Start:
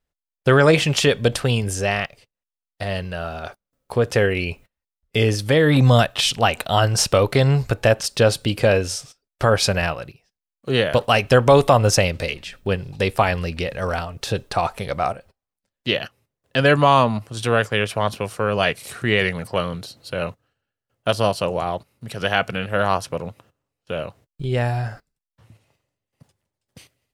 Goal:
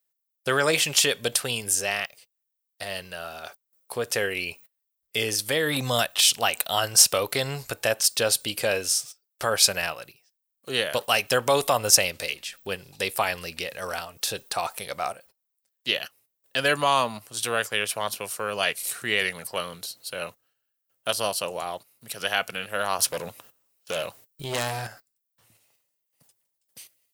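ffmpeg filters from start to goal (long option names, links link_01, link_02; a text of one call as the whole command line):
ffmpeg -i in.wav -filter_complex "[0:a]asettb=1/sr,asplit=3[link_01][link_02][link_03];[link_01]atrim=end=22.994[link_04];[link_02]atrim=start=22.99:end=24.87,asetpts=PTS-STARTPTS,afade=type=in:duration=0.004:curve=qsin,afade=type=out:start_time=1.876:duration=0.004:curve=qsin,aeval=exprs='0.266*(cos(1*acos(clip(val(0)/0.266,-1,1)))-cos(1*PI/2))+0.0841*(cos(5*acos(clip(val(0)/0.266,-1,1)))-cos(5*PI/2))':channel_layout=same[link_05];[link_03]atrim=start=24.866[link_06];[link_04][link_05]acrossfade=duration=0.004:curve1=hsin:curve2=qsin[link_07];[link_07][link_06]acrossfade=duration=0.004:curve1=qsin:curve2=hsin,aemphasis=mode=production:type=riaa,volume=-6.5dB" out.wav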